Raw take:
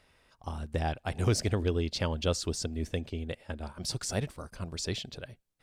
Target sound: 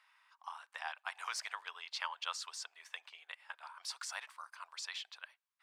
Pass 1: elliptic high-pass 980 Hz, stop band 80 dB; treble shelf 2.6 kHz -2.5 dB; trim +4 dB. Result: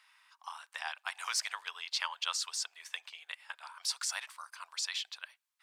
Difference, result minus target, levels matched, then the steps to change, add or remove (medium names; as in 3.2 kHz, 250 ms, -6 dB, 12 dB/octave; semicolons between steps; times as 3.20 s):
2 kHz band -3.0 dB
change: treble shelf 2.6 kHz -13.5 dB